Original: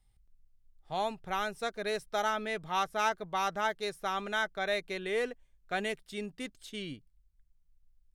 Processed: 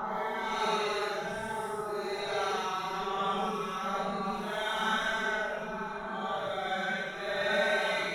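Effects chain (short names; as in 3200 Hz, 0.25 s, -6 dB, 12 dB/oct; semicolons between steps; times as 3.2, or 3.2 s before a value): reverse delay 0.208 s, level -2 dB; bell 110 Hz +9.5 dB 0.79 oct; echo with dull and thin repeats by turns 0.124 s, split 1300 Hz, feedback 50%, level -4 dB; Paulstretch 7.8×, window 0.05 s, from 3.75; gain -2 dB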